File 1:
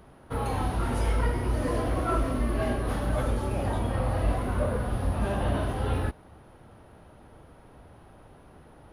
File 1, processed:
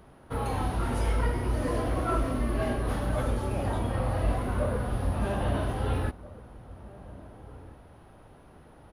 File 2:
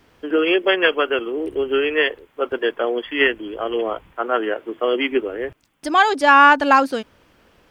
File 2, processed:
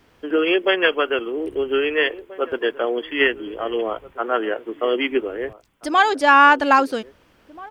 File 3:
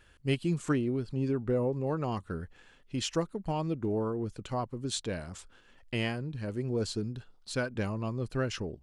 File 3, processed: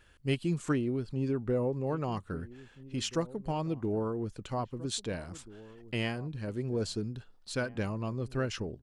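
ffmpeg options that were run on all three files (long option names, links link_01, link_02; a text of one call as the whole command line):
ffmpeg -i in.wav -filter_complex "[0:a]asplit=2[link_01][link_02];[link_02]adelay=1633,volume=-18dB,highshelf=frequency=4000:gain=-36.7[link_03];[link_01][link_03]amix=inputs=2:normalize=0,volume=-1dB" out.wav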